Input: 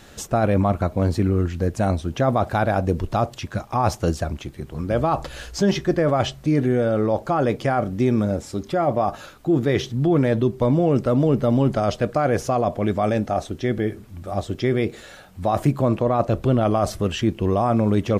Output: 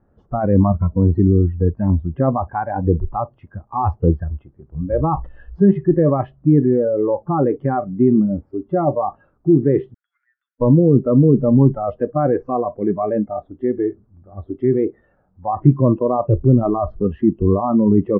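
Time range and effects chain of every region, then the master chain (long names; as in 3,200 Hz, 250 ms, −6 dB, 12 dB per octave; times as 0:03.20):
0:09.94–0:10.61: Chebyshev high-pass with heavy ripple 1,400 Hz, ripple 3 dB + downward compressor 10 to 1, threshold −43 dBFS
whole clip: low-pass filter 1,300 Hz 24 dB per octave; noise reduction from a noise print of the clip's start 19 dB; low-shelf EQ 430 Hz +8 dB; level +1 dB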